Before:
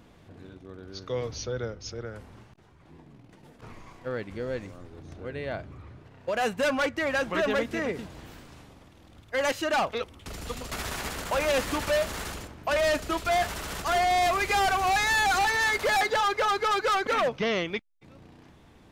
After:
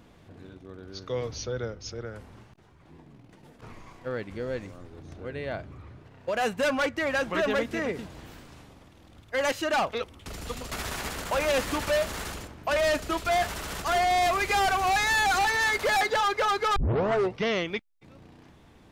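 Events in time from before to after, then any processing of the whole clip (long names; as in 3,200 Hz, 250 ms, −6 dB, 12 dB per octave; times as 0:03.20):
0:16.76: tape start 0.66 s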